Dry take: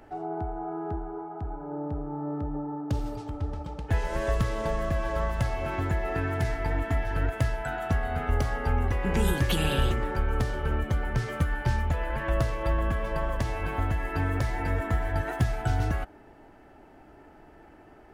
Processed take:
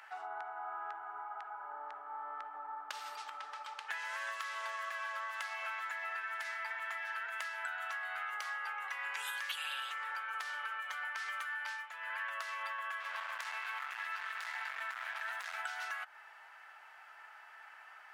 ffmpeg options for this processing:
-filter_complex "[0:a]asettb=1/sr,asplit=3[a][b][c];[a]atrim=end=13.004[d];[b]atrim=start=13:end=15.59,asetpts=PTS-STARTPTS,afade=t=in:d=0.004:c=qsin,afade=t=out:st=2.586:d=0.004:c=qsin,volume=29dB,asoftclip=hard,volume=-29dB[e];[c]atrim=start=15.586[f];[d][e]acrossfade=d=0.004:c1=hsin:c2=qsin[g];[g][f]acrossfade=d=0.004:c1=qsin:c2=hsin,asplit=3[h][i][j];[h]atrim=end=11.89,asetpts=PTS-STARTPTS,afade=t=out:st=11.65:d=0.24:silence=0.237137[k];[i]atrim=start=11.89:end=12.01,asetpts=PTS-STARTPTS,volume=-12.5dB[l];[j]atrim=start=12.01,asetpts=PTS-STARTPTS,afade=t=in:d=0.24:silence=0.237137[m];[k][l][m]concat=n=3:v=0:a=1,highpass=f=1.2k:w=0.5412,highpass=f=1.2k:w=1.3066,highshelf=f=4.4k:g=-9,acompressor=threshold=-47dB:ratio=6,volume=9dB"

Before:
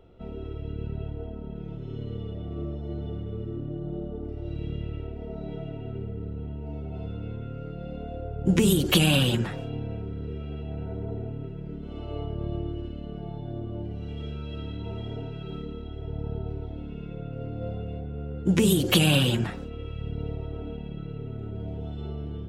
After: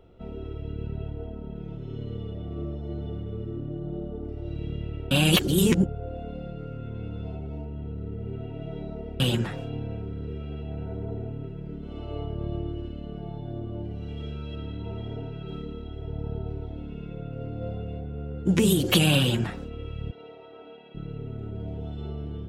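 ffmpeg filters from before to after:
-filter_complex "[0:a]asettb=1/sr,asplit=3[a][b][c];[a]atrim=end=14.554[d];[b]atrim=start=14.55:end=15.48,asetpts=PTS-STARTPTS,afade=t=in:d=0.004:c=qsin,afade=t=out:st=0.926:d=0.004:c=qsin,highshelf=f=4.1k:g=-6.5[e];[c]atrim=start=15.476[f];[d][e]acrossfade=d=0.004:c1=hsin:c2=qsin[g];[g][f]acrossfade=d=0.004:c1=qsin:c2=hsin,asettb=1/sr,asplit=3[h][i][j];[h]atrim=end=20.114[k];[i]atrim=start=20.11:end=20.95,asetpts=PTS-STARTPTS,afade=t=in:d=0.004:c=qsin,afade=t=out:st=0.836:d=0.004:c=qsin,highpass=580,lowpass=4.9k[l];[j]atrim=start=20.946[m];[k][l]acrossfade=d=0.004:c1=hsin:c2=qsin[n];[n][m]acrossfade=d=0.004:c1=qsin:c2=hsin,asplit=3[o][p][q];[o]atrim=end=5.112[r];[p]atrim=start=5.108:end=9.202,asetpts=PTS-STARTPTS,areverse[s];[q]atrim=start=9.198[t];[r][s]acrossfade=d=0.004:c1=hsin:c2=hsin[u];[u][t]acrossfade=d=0.004:c1=hsin:c2=hsin"

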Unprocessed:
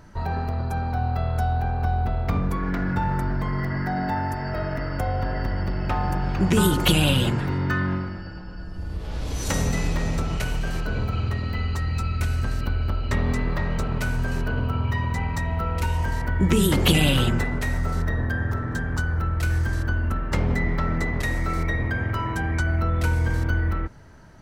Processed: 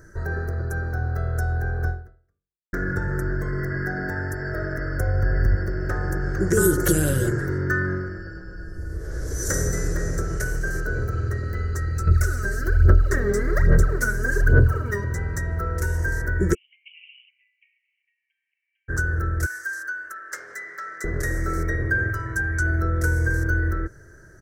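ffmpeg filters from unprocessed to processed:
-filter_complex "[0:a]asettb=1/sr,asplit=3[a][b][c];[a]atrim=end=4.794[d];[b]atrim=start=4.79:end=5.56,asetpts=PTS-STARTPTS,afade=t=in:d=0.004:c=qsin,afade=t=out:st=0.766:d=0.004:c=qsin,asubboost=boost=8:cutoff=220[e];[c]atrim=start=5.556[f];[d][e]acrossfade=d=0.004:c1=hsin:c2=qsin[g];[g][f]acrossfade=d=0.004:c1=qsin:c2=hsin,asettb=1/sr,asplit=3[h][i][j];[h]atrim=end=12.074[k];[i]atrim=start=12.07:end=15.04,asetpts=PTS-STARTPTS,afade=t=in:d=0.004:c=qsin,afade=t=out:st=2.966:d=0.004:c=qsin,aphaser=in_gain=1:out_gain=1:delay=5:decay=0.74:speed=1.2:type=sinusoidal[l];[j]atrim=start=15.036[m];[k][l]acrossfade=d=0.004:c1=hsin:c2=qsin[n];[n][m]acrossfade=d=0.004:c1=qsin:c2=hsin,asplit=3[o][p][q];[o]afade=t=out:st=16.53:d=0.02[r];[p]asuperpass=centerf=2600:order=12:qfactor=3.4,afade=t=in:st=16.53:d=0.02,afade=t=out:st=18.88:d=0.02[s];[q]afade=t=in:st=18.88:d=0.02[t];[r][s][t]amix=inputs=3:normalize=0,asettb=1/sr,asplit=3[u][v][w];[u]atrim=end=19.464[x];[v]atrim=start=19.46:end=21.04,asetpts=PTS-STARTPTS,afade=t=in:d=0.004:c=qsin,afade=t=out:st=1.576:d=0.004:c=qsin,highpass=1.3k[y];[w]atrim=start=21.036[z];[x][y]acrossfade=d=0.004:c1=hsin:c2=qsin[aa];[aa][z]acrossfade=d=0.004:c1=qsin:c2=hsin,asettb=1/sr,asplit=3[ab][ac][ad];[ab]atrim=end=22.104[ae];[ac]atrim=start=22.1:end=22.62,asetpts=PTS-STARTPTS,afade=t=in:d=0.004:c=qsin,afade=t=out:st=0.516:d=0.004:c=qsin,equalizer=f=360:t=o:w=2.1:g=-7.5[af];[ad]atrim=start=22.616[ag];[ae][af]acrossfade=d=0.004:c1=hsin:c2=qsin[ah];[ah][ag]acrossfade=d=0.004:c1=qsin:c2=hsin,asplit=2[ai][aj];[ai]atrim=end=2.73,asetpts=PTS-STARTPTS,afade=t=out:st=1.89:d=0.84:c=exp[ak];[aj]atrim=start=2.73,asetpts=PTS-STARTPTS,afade=t=in:d=0.004:c=hsin[al];[ak][al]concat=n=2:v=0:a=1,firequalizer=gain_entry='entry(120,0);entry(240,-10);entry(350,7);entry(550,0);entry(870,-16);entry(1600,9);entry(2500,-22);entry(3600,-17);entry(5800,5)':delay=0.05:min_phase=1"

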